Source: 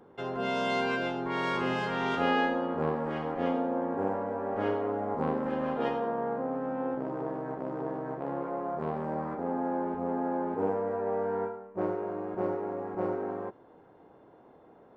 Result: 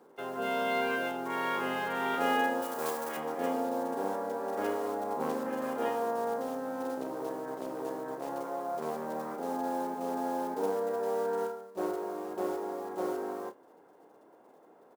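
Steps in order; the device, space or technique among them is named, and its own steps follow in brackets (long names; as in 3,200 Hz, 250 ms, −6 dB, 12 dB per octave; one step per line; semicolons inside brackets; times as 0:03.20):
early digital voice recorder (band-pass filter 280–3,400 Hz; one scale factor per block 5 bits)
0:02.62–0:03.17: spectral tilt +3 dB per octave
double-tracking delay 30 ms −11 dB
level −1.5 dB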